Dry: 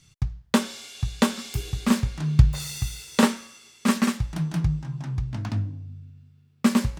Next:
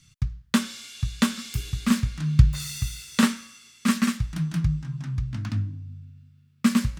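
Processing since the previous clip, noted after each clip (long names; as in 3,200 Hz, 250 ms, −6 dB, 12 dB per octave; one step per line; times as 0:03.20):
flat-topped bell 570 Hz −10.5 dB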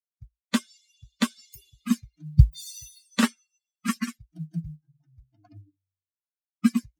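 spectral dynamics exaggerated over time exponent 3
floating-point word with a short mantissa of 6 bits
level +2.5 dB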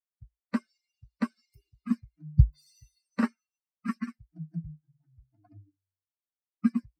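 moving average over 13 samples
level −4 dB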